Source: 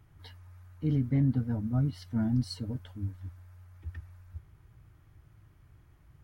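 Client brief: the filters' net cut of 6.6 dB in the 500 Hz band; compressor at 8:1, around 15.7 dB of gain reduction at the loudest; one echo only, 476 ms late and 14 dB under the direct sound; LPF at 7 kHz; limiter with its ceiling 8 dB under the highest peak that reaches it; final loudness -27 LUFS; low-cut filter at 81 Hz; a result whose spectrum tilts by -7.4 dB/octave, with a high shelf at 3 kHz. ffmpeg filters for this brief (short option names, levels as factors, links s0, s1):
-af "highpass=81,lowpass=7000,equalizer=f=500:t=o:g=-8.5,highshelf=f=3000:g=-9,acompressor=threshold=0.00891:ratio=8,alimiter=level_in=7.08:limit=0.0631:level=0:latency=1,volume=0.141,aecho=1:1:476:0.2,volume=16.8"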